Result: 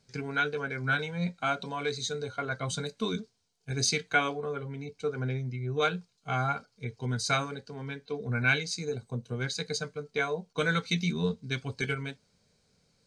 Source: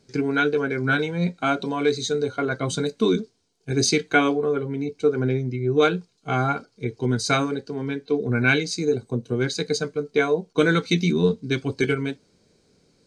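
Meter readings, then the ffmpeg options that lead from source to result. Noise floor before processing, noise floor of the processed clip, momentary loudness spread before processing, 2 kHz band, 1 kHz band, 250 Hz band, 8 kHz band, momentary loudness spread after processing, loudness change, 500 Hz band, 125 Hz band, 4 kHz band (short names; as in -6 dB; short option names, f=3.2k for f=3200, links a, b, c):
-64 dBFS, -72 dBFS, 8 LU, -5.5 dB, -6.0 dB, -12.0 dB, -5.0 dB, 10 LU, -8.0 dB, -11.5 dB, -6.5 dB, -5.0 dB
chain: -af "equalizer=f=330:t=o:w=0.74:g=-15,volume=-5dB"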